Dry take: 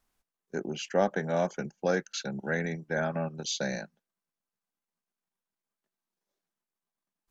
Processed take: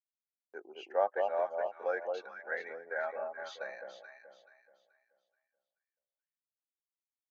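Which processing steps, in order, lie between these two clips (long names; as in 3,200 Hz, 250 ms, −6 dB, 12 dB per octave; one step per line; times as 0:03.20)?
spectral dynamics exaggerated over time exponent 1.5
low-pass filter 1,700 Hz 12 dB per octave
noise gate with hold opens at −49 dBFS
high-pass filter 540 Hz 24 dB per octave
on a send: delay that swaps between a low-pass and a high-pass 215 ms, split 1,000 Hz, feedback 56%, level −3 dB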